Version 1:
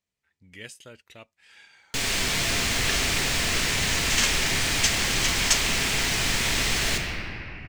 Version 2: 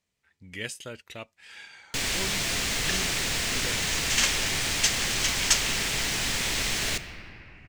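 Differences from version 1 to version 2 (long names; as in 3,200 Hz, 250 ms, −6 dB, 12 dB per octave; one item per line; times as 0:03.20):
speech +6.5 dB
first sound: send −10.5 dB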